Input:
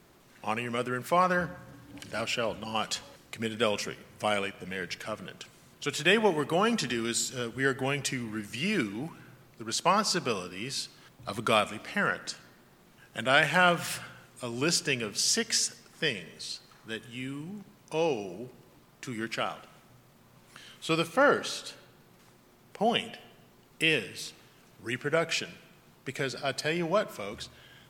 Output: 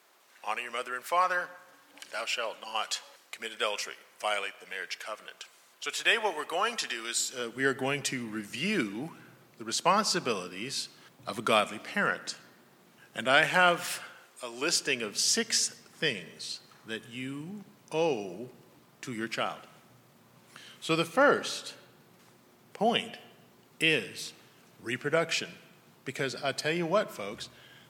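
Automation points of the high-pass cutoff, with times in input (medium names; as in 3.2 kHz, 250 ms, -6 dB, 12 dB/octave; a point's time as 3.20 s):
7.13 s 660 Hz
7.67 s 160 Hz
13.27 s 160 Hz
14.49 s 500 Hz
15.42 s 120 Hz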